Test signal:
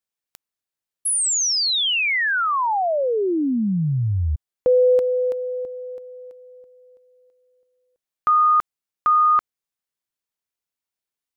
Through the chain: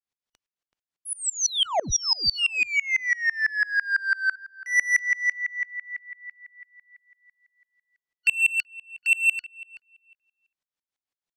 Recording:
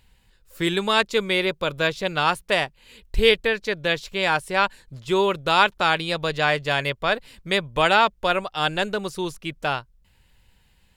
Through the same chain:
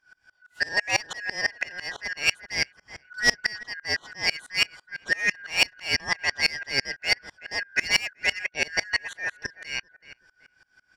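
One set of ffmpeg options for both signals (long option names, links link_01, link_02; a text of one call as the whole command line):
ffmpeg -i in.wav -filter_complex "[0:a]afftfilt=real='real(if(lt(b,272),68*(eq(floor(b/68),0)*2+eq(floor(b/68),1)*0+eq(floor(b/68),2)*3+eq(floor(b/68),3)*1)+mod(b,68),b),0)':imag='imag(if(lt(b,272),68*(eq(floor(b/68),0)*2+eq(floor(b/68),1)*0+eq(floor(b/68),2)*3+eq(floor(b/68),3)*1)+mod(b,68),b),0)':win_size=2048:overlap=0.75,lowpass=6300,acrossover=split=4600[link_01][link_02];[link_01]asoftclip=type=tanh:threshold=-18.5dB[link_03];[link_03][link_02]amix=inputs=2:normalize=0,asplit=2[link_04][link_05];[link_05]adelay=379,lowpass=frequency=2100:poles=1,volume=-16.5dB,asplit=2[link_06][link_07];[link_07]adelay=379,lowpass=frequency=2100:poles=1,volume=0.26,asplit=2[link_08][link_09];[link_09]adelay=379,lowpass=frequency=2100:poles=1,volume=0.26[link_10];[link_04][link_06][link_08][link_10]amix=inputs=4:normalize=0,aeval=exprs='val(0)*pow(10,-28*if(lt(mod(-6*n/s,1),2*abs(-6)/1000),1-mod(-6*n/s,1)/(2*abs(-6)/1000),(mod(-6*n/s,1)-2*abs(-6)/1000)/(1-2*abs(-6)/1000))/20)':channel_layout=same,volume=5.5dB" out.wav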